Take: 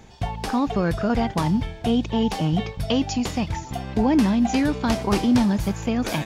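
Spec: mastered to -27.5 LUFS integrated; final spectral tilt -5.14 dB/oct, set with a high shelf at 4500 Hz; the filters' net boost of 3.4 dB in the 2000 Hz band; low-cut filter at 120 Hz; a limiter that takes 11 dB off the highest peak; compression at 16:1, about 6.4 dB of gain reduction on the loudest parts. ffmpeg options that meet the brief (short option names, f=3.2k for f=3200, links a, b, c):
-af "highpass=120,equalizer=f=2k:t=o:g=5.5,highshelf=f=4.5k:g=-5.5,acompressor=threshold=-21dB:ratio=16,volume=2.5dB,alimiter=limit=-18.5dB:level=0:latency=1"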